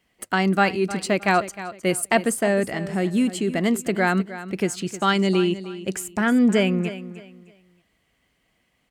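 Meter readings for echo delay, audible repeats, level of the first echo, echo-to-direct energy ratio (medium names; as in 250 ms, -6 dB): 310 ms, 2, -14.0 dB, -13.5 dB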